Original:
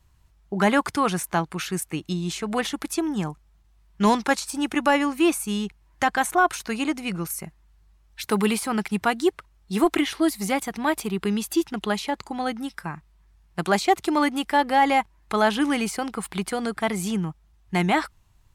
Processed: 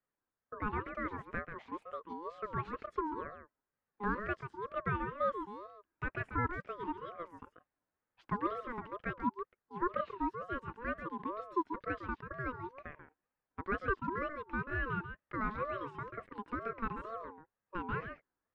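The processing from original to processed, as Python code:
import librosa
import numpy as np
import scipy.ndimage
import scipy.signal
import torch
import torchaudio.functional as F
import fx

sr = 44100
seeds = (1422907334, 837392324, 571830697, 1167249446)

p1 = fx.rider(x, sr, range_db=3, speed_s=2.0)
p2 = fx.ladder_bandpass(p1, sr, hz=510.0, resonance_pct=25)
p3 = p2 + fx.echo_single(p2, sr, ms=138, db=-8.5, dry=0)
p4 = fx.ring_lfo(p3, sr, carrier_hz=760.0, swing_pct=20, hz=2.1)
y = p4 * 10.0 ** (1.0 / 20.0)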